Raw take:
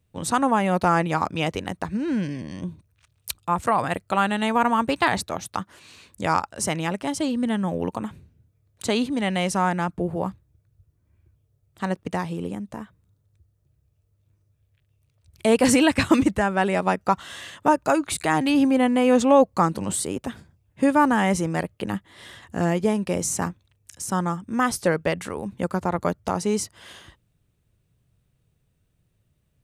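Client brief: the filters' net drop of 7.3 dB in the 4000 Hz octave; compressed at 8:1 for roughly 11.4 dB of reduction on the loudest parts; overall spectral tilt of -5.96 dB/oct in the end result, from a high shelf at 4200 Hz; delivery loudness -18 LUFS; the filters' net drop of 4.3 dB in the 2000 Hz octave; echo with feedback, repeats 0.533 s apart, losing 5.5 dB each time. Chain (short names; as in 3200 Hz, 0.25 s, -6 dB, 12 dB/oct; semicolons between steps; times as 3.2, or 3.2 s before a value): bell 2000 Hz -3 dB; bell 4000 Hz -4.5 dB; high shelf 4200 Hz -8 dB; compressor 8:1, threshold -23 dBFS; feedback echo 0.533 s, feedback 53%, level -5.5 dB; gain +11 dB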